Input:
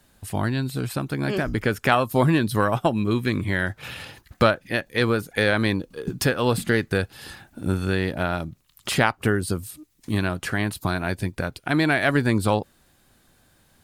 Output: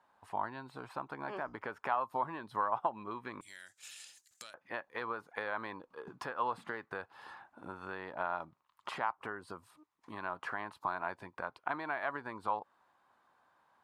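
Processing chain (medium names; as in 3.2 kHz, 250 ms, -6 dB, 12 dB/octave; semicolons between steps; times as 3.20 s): compression 5:1, threshold -24 dBFS, peak gain reduction 11 dB; band-pass filter 960 Hz, Q 3.9, from 3.41 s 7.3 kHz, from 4.54 s 1 kHz; trim +3.5 dB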